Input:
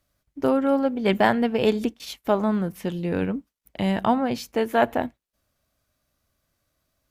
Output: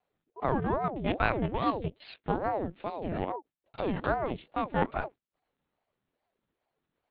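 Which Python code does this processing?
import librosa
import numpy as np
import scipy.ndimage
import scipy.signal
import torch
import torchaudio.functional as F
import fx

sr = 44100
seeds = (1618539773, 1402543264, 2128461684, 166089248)

y = fx.lpc_vocoder(x, sr, seeds[0], excitation='pitch_kept', order=8)
y = fx.ring_lfo(y, sr, carrier_hz=450.0, swing_pct=65, hz=2.4)
y = y * 10.0 ** (-5.0 / 20.0)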